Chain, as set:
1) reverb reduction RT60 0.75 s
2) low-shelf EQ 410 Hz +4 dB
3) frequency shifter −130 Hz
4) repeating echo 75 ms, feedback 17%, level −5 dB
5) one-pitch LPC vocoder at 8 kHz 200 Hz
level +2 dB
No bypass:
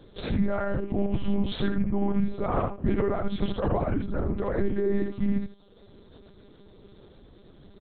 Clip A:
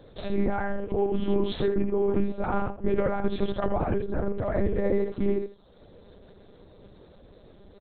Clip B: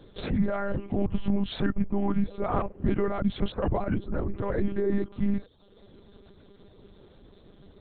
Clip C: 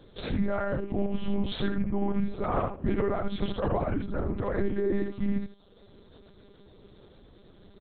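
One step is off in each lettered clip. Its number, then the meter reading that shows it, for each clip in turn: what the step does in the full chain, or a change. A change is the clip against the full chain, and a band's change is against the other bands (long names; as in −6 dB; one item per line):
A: 3, 500 Hz band +5.0 dB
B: 4, change in crest factor +2.0 dB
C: 2, 125 Hz band −2.0 dB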